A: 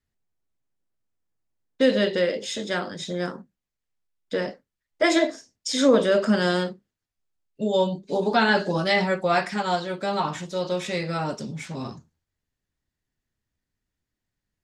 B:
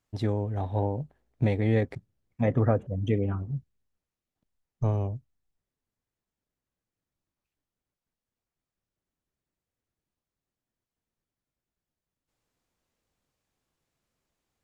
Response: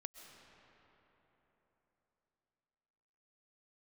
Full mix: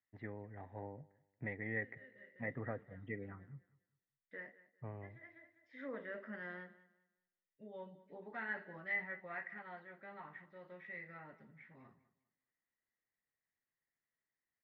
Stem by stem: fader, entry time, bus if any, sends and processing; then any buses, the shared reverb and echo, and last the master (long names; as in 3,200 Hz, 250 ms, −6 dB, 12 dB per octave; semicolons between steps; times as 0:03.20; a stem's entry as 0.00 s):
−16.0 dB, 0.00 s, no send, echo send −18 dB, automatic ducking −20 dB, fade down 0.30 s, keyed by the second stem
−6.0 dB, 0.00 s, no send, echo send −23.5 dB, high-pass filter 120 Hz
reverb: not used
echo: repeating echo 200 ms, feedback 26%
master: transistor ladder low-pass 2,000 Hz, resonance 85%